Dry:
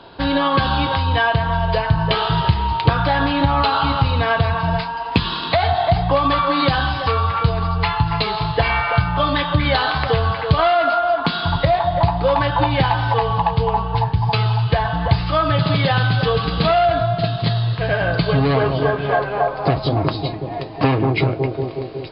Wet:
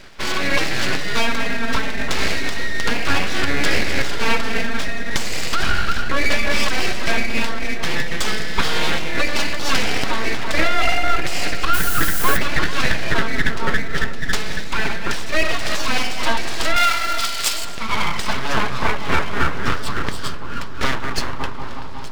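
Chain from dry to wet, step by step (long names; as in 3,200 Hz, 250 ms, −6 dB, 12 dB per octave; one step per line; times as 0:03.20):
Chebyshev high-pass filter 460 Hz, order 4
full-wave rectification
in parallel at −2.5 dB: brickwall limiter −12 dBFS, peak gain reduction 7 dB
on the sum: amplitude tremolo 3.5 Hz, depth 34%
0:11.73–0:12.36: background noise blue −25 dBFS
0:16.76–0:17.65: spectral tilt +3.5 dB per octave
delay with a low-pass on its return 439 ms, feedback 66%, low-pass 940 Hz, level −12 dB
on a send at −23 dB: convolution reverb RT60 0.55 s, pre-delay 50 ms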